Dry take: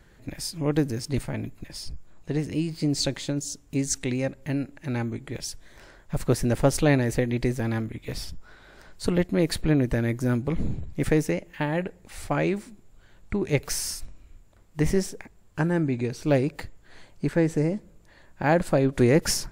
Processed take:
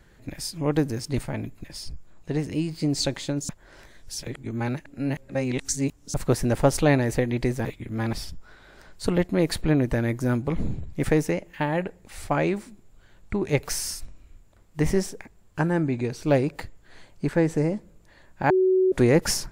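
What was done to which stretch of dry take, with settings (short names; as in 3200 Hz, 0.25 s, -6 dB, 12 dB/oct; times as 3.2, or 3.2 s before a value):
3.49–6.14 reverse
7.65–8.13 reverse
18.5–18.92 bleep 374 Hz -17 dBFS
whole clip: dynamic EQ 890 Hz, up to +4 dB, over -40 dBFS, Q 1.2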